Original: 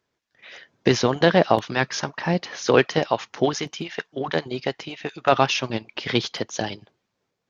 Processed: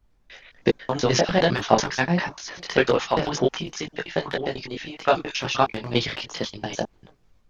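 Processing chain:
slices reordered back to front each 99 ms, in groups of 3
transient designer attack +7 dB, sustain +11 dB
background noise brown −57 dBFS
multi-voice chorus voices 6, 1.2 Hz, delay 20 ms, depth 3.6 ms
level −3 dB

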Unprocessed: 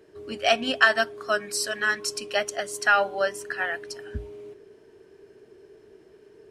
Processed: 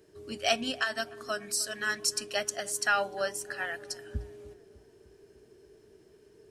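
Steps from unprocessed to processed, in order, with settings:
bass and treble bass +6 dB, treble +10 dB
0:00.62–0:01.86: downward compressor 2.5 to 1, threshold −22 dBFS, peak gain reduction 7.5 dB
feedback echo with a low-pass in the loop 301 ms, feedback 63%, low-pass 1,400 Hz, level −20 dB
level −7 dB

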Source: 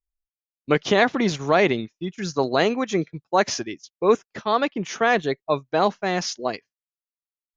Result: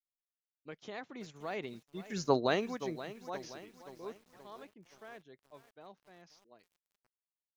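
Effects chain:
source passing by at 0:02.32, 13 m/s, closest 1.7 metres
feedback echo at a low word length 525 ms, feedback 55%, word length 8 bits, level −13.5 dB
level −5.5 dB

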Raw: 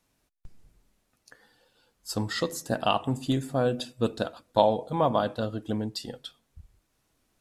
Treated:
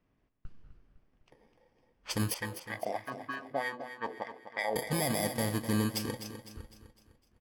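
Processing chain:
samples in bit-reversed order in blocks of 32 samples
0:02.34–0:04.76: auto-filter band-pass sine 3.2 Hz 440–1,800 Hz
brickwall limiter −21.5 dBFS, peak gain reduction 10 dB
low-pass that shuts in the quiet parts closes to 1,900 Hz, open at −29.5 dBFS
repeating echo 253 ms, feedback 45%, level −10.5 dB
level +1.5 dB

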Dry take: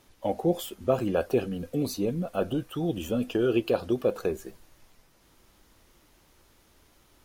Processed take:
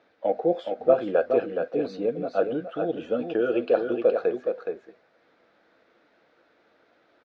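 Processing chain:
loudspeaker in its box 280–3,600 Hz, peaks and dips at 470 Hz +7 dB, 670 Hz +6 dB, 1,000 Hz −6 dB, 1,500 Hz +6 dB, 3,000 Hz −8 dB
notch filter 390 Hz, Q 12
on a send: single-tap delay 419 ms −6 dB

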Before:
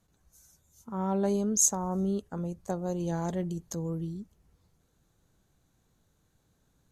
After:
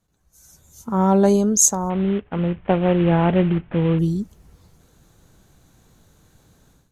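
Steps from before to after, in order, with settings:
0:01.90–0:03.99: variable-slope delta modulation 16 kbit/s
automatic gain control gain up to 16.5 dB
level −1 dB

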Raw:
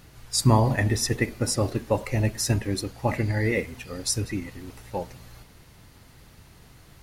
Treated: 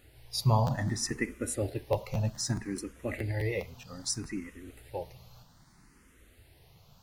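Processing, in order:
regular buffer underruns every 0.21 s, samples 512, repeat, from 0:00.66
frequency shifter mixed with the dry sound +0.63 Hz
level −5 dB

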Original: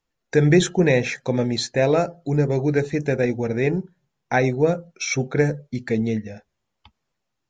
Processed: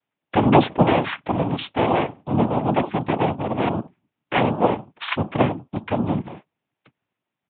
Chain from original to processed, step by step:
cochlear-implant simulation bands 4
downsampling to 8,000 Hz

